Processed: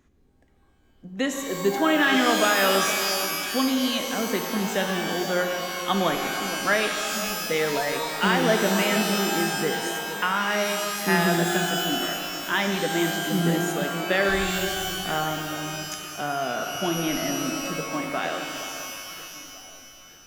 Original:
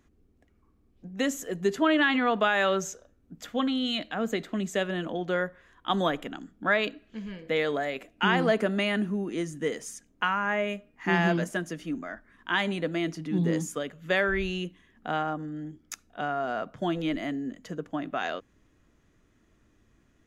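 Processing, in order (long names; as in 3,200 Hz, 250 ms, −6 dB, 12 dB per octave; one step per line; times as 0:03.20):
delay that swaps between a low-pass and a high-pass 469 ms, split 1,100 Hz, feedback 56%, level −11 dB
reverb with rising layers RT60 2.3 s, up +12 semitones, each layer −2 dB, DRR 5 dB
level +1.5 dB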